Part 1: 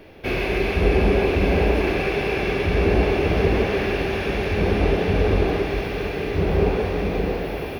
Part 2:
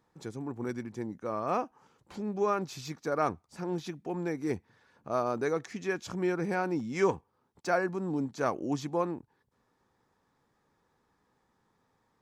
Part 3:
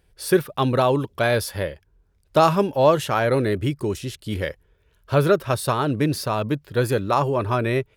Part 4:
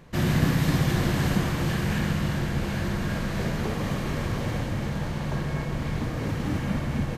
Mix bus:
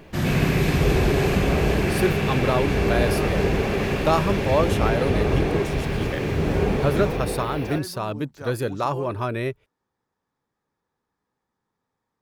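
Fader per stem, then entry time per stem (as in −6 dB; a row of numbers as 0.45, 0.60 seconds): −3.5, −7.5, −4.5, +0.5 decibels; 0.00, 0.00, 1.70, 0.00 seconds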